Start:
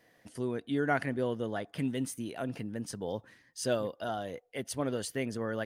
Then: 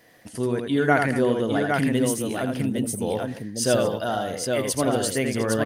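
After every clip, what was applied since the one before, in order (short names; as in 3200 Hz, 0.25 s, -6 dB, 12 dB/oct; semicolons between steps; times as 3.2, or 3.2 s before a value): spectral delete 2.57–2.96, 810–8000 Hz; high shelf 7200 Hz +5.5 dB; on a send: tapped delay 82/226/810 ms -5/-17.5/-4 dB; on the sum: gain +8.5 dB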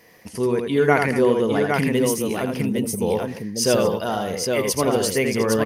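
ripple EQ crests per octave 0.82, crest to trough 7 dB; gain +3 dB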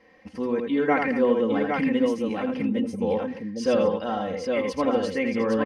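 LPF 2800 Hz 12 dB/oct; comb 3.8 ms, depth 84%; gain -5.5 dB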